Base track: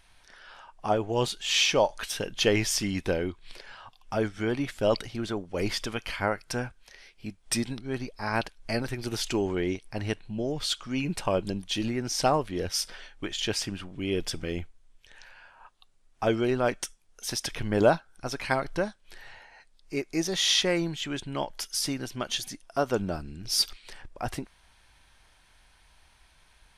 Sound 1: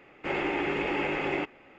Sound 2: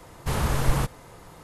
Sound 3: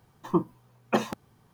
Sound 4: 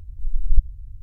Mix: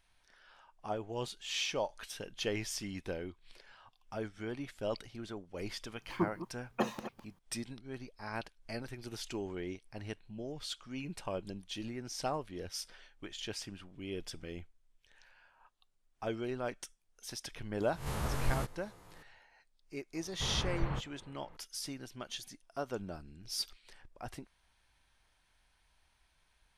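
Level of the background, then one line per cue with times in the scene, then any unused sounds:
base track -12 dB
5.86 add 3 -8 dB + reverse delay 0.154 s, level -12 dB
17.8 add 2 -12.5 dB + spectral swells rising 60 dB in 0.45 s
20.14 add 2 -12 dB + LPF 2900 Hz 24 dB/oct
not used: 1, 4

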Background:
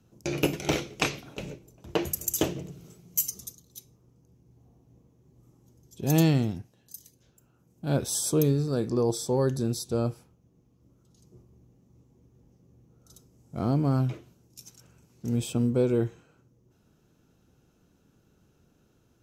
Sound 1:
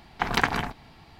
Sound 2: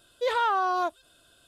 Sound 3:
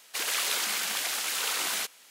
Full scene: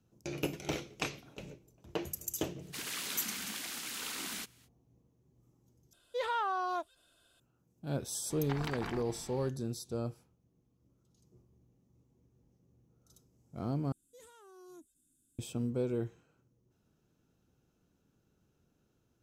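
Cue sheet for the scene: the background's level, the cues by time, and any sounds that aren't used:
background -9.5 dB
2.59 add 3 -10.5 dB, fades 0.05 s + resonant low shelf 370 Hz +12.5 dB, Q 1.5
5.93 replace with 2 -8.5 dB
8.3 add 1 -1.5 dB + compressor 3:1, threshold -39 dBFS
13.92 replace with 2 -14.5 dB + EQ curve 100 Hz 0 dB, 260 Hz +11 dB, 630 Hz -26 dB, 4600 Hz -15 dB, 6900 Hz +7 dB

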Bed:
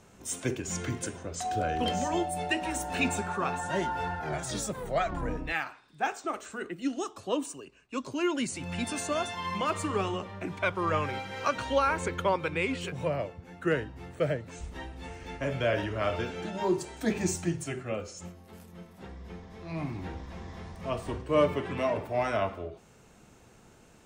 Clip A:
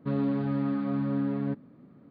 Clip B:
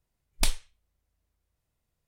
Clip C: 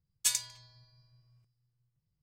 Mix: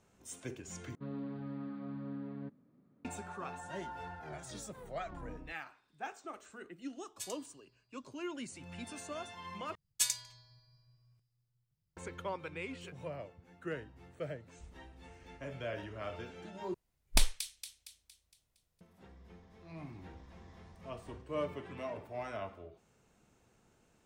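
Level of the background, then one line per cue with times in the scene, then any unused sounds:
bed -12.5 dB
0.95 replace with A -14 dB
6.95 add C -16 dB
9.75 replace with C -2.5 dB
16.74 replace with B -1.5 dB + thin delay 0.231 s, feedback 46%, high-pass 3200 Hz, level -8 dB

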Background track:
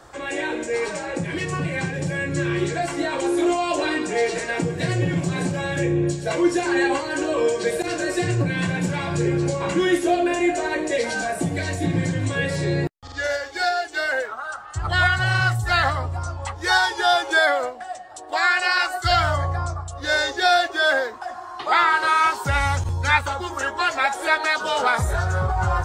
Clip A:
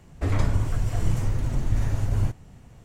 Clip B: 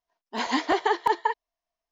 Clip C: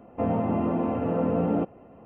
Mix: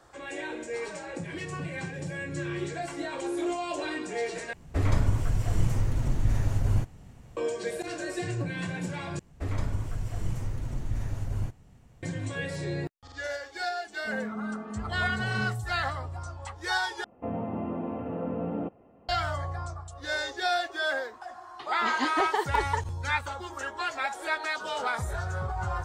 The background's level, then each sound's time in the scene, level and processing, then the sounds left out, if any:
background track -10 dB
4.53 replace with A -1.5 dB
9.19 replace with A -7.5 dB
13.86 add C -1.5 dB + metallic resonator 210 Hz, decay 0.3 s, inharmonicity 0.008
17.04 replace with C -7.5 dB
21.48 add B -4.5 dB

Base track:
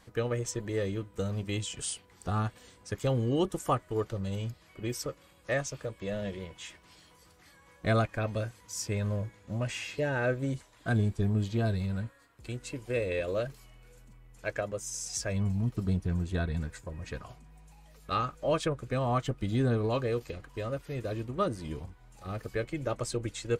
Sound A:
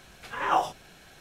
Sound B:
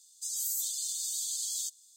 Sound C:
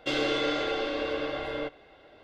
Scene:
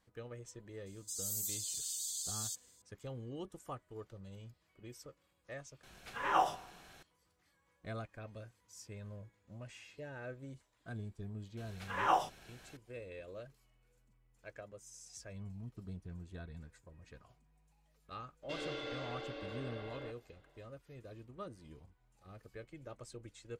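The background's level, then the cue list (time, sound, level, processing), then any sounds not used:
base track -17 dB
0.86 add B -6 dB
5.83 replace with A -6 dB + Schroeder reverb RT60 1.1 s, combs from 25 ms, DRR 16 dB
11.57 add A -6 dB
18.43 add C -15 dB

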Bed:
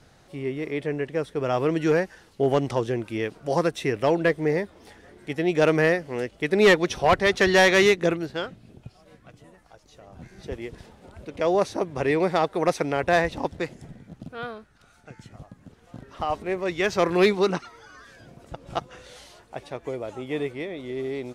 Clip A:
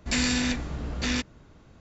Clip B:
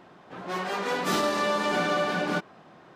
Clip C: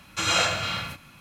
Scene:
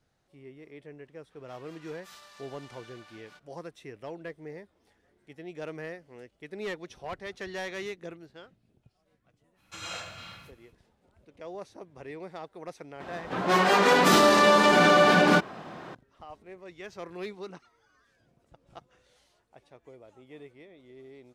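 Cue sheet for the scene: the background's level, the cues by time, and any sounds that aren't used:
bed -19 dB
0.99 add B -18 dB + passive tone stack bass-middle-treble 10-0-10
9.55 add C -16 dB, fades 0.05 s
13 add B -9.5 dB + maximiser +19 dB
not used: A

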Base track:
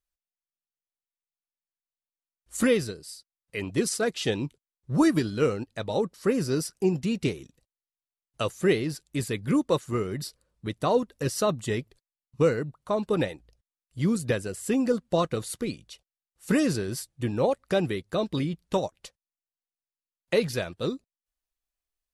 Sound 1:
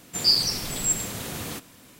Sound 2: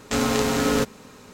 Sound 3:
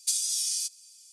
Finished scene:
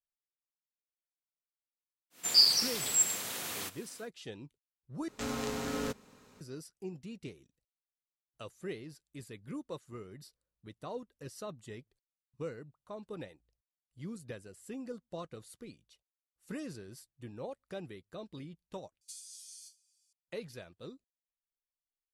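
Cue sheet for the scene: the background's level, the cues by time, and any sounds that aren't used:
base track -18 dB
2.1 add 1 -2.5 dB, fades 0.10 s + HPF 840 Hz 6 dB/oct
5.08 replace with 2 -14 dB
19.01 replace with 3 -9 dB + resonator bank G#2 sus4, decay 0.26 s

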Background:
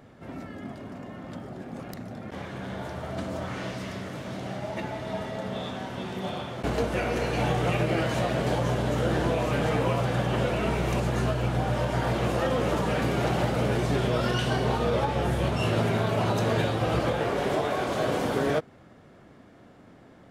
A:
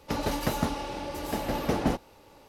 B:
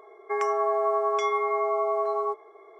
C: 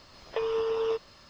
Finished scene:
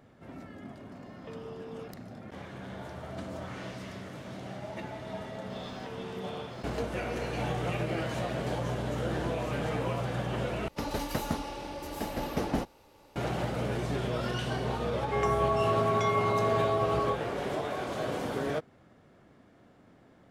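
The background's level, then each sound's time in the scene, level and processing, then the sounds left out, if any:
background -6.5 dB
0.91 add C -16 dB
5.5 add C -1.5 dB + compressor, threshold -41 dBFS
10.68 replace with A -4 dB
14.82 add B -3 dB

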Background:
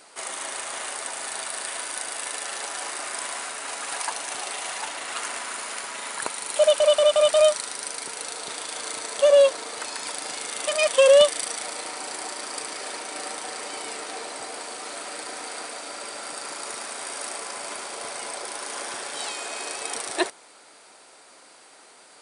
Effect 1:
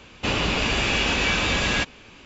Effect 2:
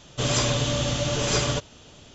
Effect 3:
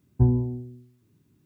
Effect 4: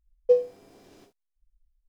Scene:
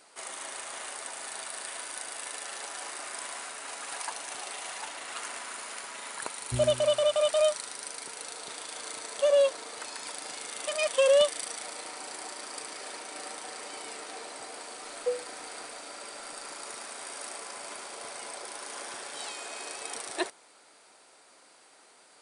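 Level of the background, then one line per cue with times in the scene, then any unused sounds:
background -7 dB
6.32 add 3 -14.5 dB
14.77 add 4 -10.5 dB
not used: 1, 2

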